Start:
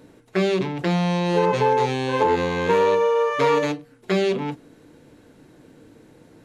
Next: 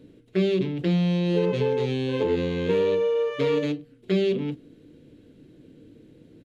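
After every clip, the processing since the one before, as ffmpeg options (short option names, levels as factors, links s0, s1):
-af "firequalizer=gain_entry='entry(320,0);entry(500,-4);entry(840,-18);entry(1200,-14);entry(3100,-2);entry(5700,-12)':delay=0.05:min_phase=1"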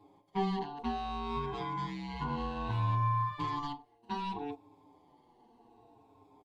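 -filter_complex "[0:a]afftfilt=real='re*pow(10,12/40*sin(2*PI*(1.5*log(max(b,1)*sr/1024/100)/log(2)-(-0.63)*(pts-256)/sr)))':imag='im*pow(10,12/40*sin(2*PI*(1.5*log(max(b,1)*sr/1024/100)/log(2)-(-0.63)*(pts-256)/sr)))':win_size=1024:overlap=0.75,aeval=exprs='val(0)*sin(2*PI*580*n/s)':c=same,asplit=2[s0][s1];[s1]adelay=6.9,afreqshift=-0.66[s2];[s0][s2]amix=inputs=2:normalize=1,volume=0.473"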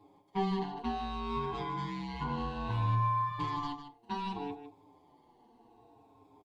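-af "aecho=1:1:153:0.316"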